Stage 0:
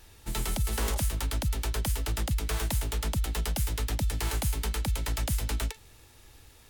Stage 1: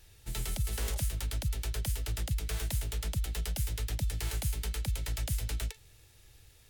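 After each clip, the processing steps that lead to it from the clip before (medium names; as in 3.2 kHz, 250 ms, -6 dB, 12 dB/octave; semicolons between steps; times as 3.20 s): graphic EQ 125/250/1000 Hz +4/-8/-8 dB; trim -4 dB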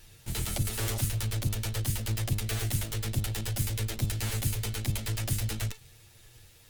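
comb filter that takes the minimum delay 8.7 ms; trim +5.5 dB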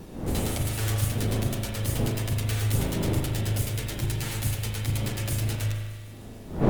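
wind noise 310 Hz -35 dBFS; thinning echo 151 ms, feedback 69%, level -16 dB; spring tank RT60 1.5 s, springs 38 ms, chirp 70 ms, DRR 0.5 dB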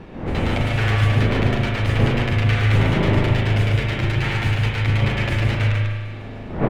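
level rider gain up to 4 dB; FFT filter 310 Hz 0 dB, 2.3 kHz +7 dB, 12 kHz -28 dB; delay 144 ms -4 dB; trim +3 dB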